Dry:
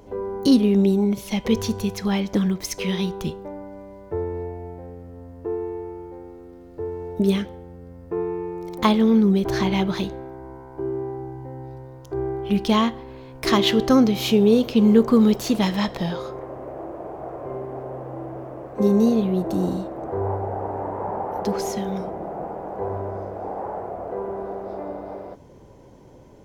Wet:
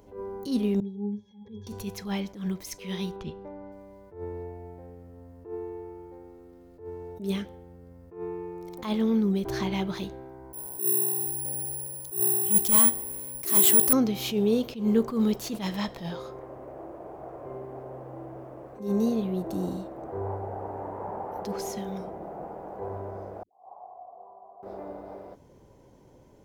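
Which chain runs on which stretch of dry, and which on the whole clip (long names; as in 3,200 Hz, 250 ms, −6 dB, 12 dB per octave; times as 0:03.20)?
0:00.80–0:01.67: low-pass with resonance 6,100 Hz, resonance Q 3.4 + resonances in every octave G#, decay 0.22 s
0:03.16–0:03.72: low-pass filter 3,600 Hz + upward compression, threshold −30 dBFS
0:10.53–0:13.93: gain into a clipping stage and back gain 17 dB + bad sample-rate conversion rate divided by 4×, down none, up zero stuff
0:23.43–0:24.63: formant resonators in series a + all-pass dispersion highs, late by 107 ms, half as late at 520 Hz
whole clip: high-shelf EQ 8,800 Hz +6.5 dB; level that may rise only so fast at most 140 dB per second; level −7.5 dB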